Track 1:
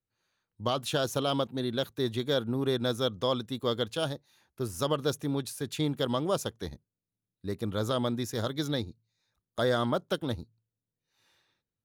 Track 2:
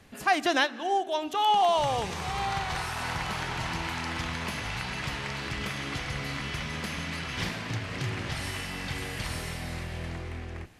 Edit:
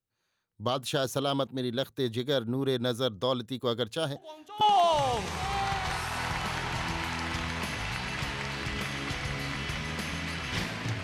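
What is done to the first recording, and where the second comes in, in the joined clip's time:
track 1
0:04.16: mix in track 2 from 0:01.01 0.45 s −16 dB
0:04.61: continue with track 2 from 0:01.46

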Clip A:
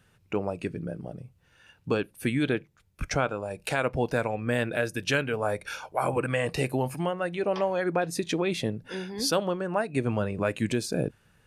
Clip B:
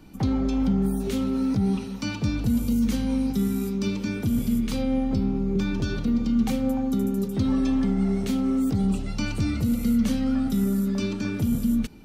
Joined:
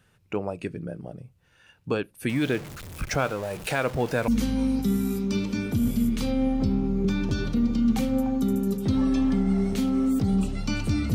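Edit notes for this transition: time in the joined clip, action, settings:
clip A
0:02.29–0:04.28: converter with a step at zero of −34 dBFS
0:04.28: continue with clip B from 0:02.79

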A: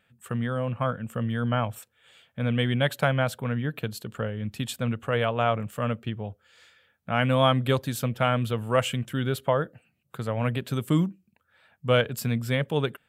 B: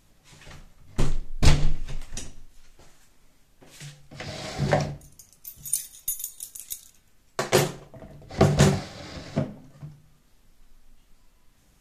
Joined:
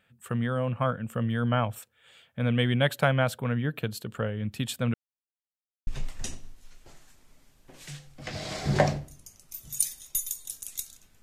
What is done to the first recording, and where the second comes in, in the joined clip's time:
A
0:04.94–0:05.87: silence
0:05.87: continue with B from 0:01.80

